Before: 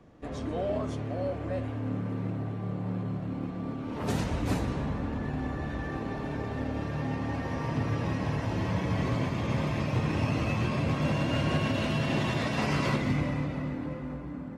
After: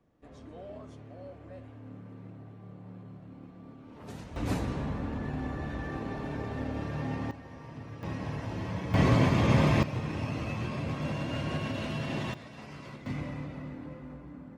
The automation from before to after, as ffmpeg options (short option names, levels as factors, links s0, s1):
-af "asetnsamples=n=441:p=0,asendcmd='4.36 volume volume -2dB;7.31 volume volume -14dB;8.03 volume volume -5.5dB;8.94 volume volume 6dB;9.83 volume volume -5.5dB;12.34 volume volume -17.5dB;13.06 volume volume -7.5dB',volume=0.2"